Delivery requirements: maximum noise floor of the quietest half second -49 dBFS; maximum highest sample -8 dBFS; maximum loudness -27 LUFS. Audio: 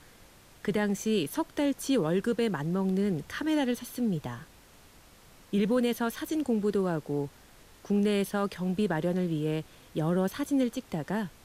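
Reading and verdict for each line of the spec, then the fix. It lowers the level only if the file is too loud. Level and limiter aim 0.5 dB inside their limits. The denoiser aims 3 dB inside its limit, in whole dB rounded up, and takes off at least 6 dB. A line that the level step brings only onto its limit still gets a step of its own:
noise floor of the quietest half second -55 dBFS: pass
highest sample -17.0 dBFS: pass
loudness -30.0 LUFS: pass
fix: none needed

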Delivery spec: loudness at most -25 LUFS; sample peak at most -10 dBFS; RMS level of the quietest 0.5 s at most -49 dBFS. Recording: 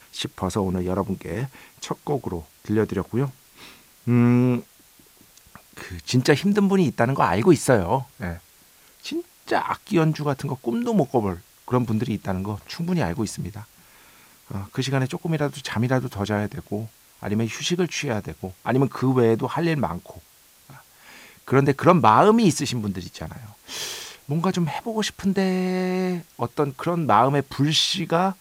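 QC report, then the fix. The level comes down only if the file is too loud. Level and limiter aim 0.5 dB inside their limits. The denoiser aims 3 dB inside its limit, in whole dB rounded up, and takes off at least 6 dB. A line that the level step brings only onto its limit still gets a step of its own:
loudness -23.0 LUFS: fail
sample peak -3.0 dBFS: fail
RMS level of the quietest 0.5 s -54 dBFS: pass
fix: trim -2.5 dB; peak limiter -10.5 dBFS

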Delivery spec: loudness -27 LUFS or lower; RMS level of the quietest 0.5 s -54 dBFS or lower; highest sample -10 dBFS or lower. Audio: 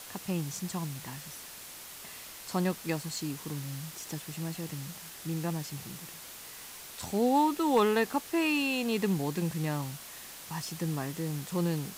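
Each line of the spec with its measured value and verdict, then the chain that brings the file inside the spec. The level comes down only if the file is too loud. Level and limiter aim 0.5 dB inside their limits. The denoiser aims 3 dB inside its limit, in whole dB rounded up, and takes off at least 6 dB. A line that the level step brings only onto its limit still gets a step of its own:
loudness -32.5 LUFS: pass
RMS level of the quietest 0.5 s -46 dBFS: fail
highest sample -16.0 dBFS: pass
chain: noise reduction 11 dB, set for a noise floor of -46 dBFS

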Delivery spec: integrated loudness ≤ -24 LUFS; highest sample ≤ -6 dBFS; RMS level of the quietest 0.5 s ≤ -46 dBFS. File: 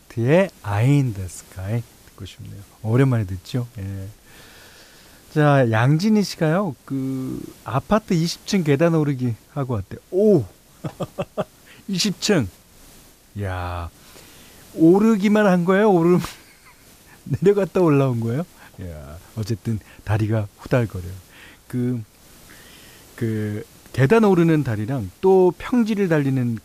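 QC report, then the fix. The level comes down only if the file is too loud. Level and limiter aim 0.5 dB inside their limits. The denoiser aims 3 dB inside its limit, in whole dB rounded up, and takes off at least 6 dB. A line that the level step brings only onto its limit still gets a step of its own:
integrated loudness -20.5 LUFS: fail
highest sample -5.5 dBFS: fail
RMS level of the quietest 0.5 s -49 dBFS: pass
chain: trim -4 dB

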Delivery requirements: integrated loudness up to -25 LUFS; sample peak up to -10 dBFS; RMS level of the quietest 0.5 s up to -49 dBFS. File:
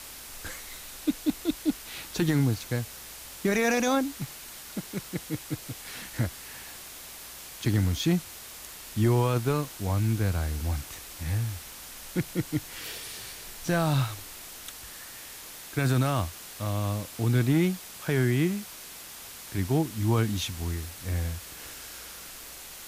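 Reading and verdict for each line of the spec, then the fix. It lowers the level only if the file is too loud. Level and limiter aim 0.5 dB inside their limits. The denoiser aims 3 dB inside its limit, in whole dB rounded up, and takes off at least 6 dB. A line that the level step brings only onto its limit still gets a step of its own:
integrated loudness -29.5 LUFS: pass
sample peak -14.0 dBFS: pass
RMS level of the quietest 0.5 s -44 dBFS: fail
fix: noise reduction 8 dB, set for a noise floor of -44 dBFS

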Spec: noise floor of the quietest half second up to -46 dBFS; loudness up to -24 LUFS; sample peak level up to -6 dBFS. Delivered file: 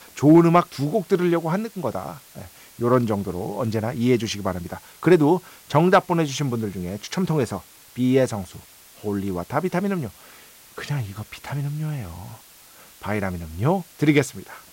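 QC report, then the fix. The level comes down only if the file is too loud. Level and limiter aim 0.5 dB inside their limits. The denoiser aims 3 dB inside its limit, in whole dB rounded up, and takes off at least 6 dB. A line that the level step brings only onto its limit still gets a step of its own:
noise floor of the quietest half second -48 dBFS: pass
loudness -22.5 LUFS: fail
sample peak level -5.5 dBFS: fail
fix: trim -2 dB

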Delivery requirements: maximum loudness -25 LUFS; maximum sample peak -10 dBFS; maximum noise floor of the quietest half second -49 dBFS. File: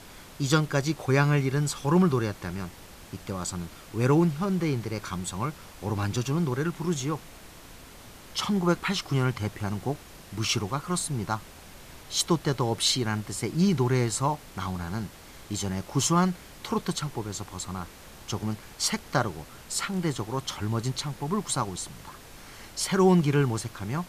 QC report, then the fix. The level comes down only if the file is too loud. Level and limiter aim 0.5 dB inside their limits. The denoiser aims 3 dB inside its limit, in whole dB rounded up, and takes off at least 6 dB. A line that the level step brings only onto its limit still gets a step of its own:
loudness -28.0 LUFS: pass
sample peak -8.5 dBFS: fail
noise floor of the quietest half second -47 dBFS: fail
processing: noise reduction 6 dB, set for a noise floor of -47 dBFS; peak limiter -10.5 dBFS

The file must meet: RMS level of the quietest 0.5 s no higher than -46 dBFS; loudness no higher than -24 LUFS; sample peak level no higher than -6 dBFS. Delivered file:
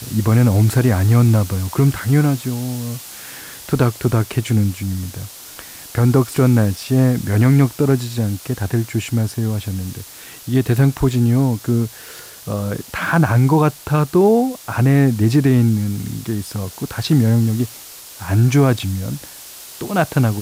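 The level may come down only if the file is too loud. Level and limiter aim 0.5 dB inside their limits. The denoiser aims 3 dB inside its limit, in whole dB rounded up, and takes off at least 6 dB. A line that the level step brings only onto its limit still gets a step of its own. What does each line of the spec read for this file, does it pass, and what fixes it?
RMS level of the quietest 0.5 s -37 dBFS: fail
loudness -17.5 LUFS: fail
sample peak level -4.5 dBFS: fail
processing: noise reduction 6 dB, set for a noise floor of -37 dBFS; trim -7 dB

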